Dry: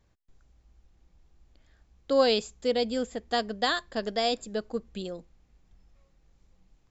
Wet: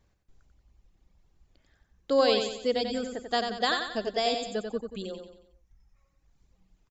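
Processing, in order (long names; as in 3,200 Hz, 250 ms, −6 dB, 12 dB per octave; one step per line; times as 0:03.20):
reverb reduction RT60 1.6 s
on a send: repeating echo 91 ms, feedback 45%, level −6 dB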